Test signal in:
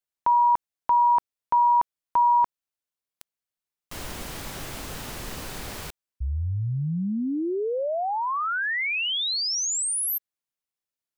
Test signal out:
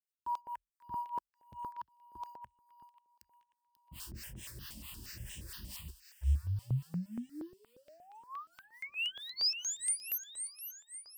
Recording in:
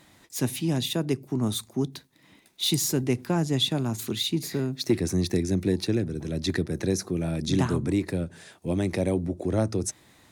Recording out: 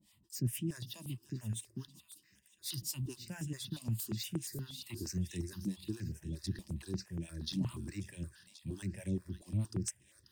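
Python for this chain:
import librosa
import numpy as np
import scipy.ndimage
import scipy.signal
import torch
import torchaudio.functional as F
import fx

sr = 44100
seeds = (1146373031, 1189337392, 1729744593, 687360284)

p1 = scipy.signal.sosfilt(scipy.signal.butter(4, 48.0, 'highpass', fs=sr, output='sos'), x)
p2 = fx.tone_stack(p1, sr, knobs='6-0-2')
p3 = fx.quant_float(p2, sr, bits=2)
p4 = p2 + (p3 * 10.0 ** (-9.0 / 20.0))
p5 = fx.harmonic_tremolo(p4, sr, hz=4.6, depth_pct=100, crossover_hz=610.0)
p6 = fx.ripple_eq(p5, sr, per_octave=1.3, db=7)
p7 = fx.echo_wet_highpass(p6, sr, ms=538, feedback_pct=53, hz=1700.0, wet_db=-11.0)
p8 = fx.phaser_held(p7, sr, hz=8.5, low_hz=400.0, high_hz=4600.0)
y = p8 * 10.0 ** (8.5 / 20.0)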